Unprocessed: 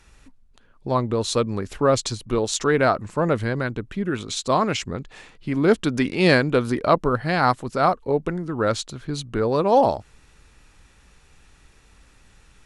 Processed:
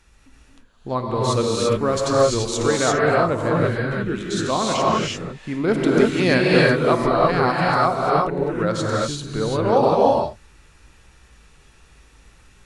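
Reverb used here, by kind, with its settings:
reverb whose tail is shaped and stops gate 370 ms rising, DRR −4.5 dB
level −3 dB

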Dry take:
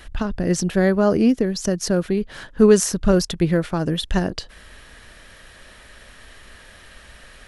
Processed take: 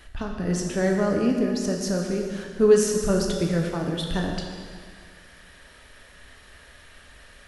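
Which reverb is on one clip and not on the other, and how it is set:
dense smooth reverb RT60 2 s, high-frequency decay 0.9×, DRR 0.5 dB
level −7 dB

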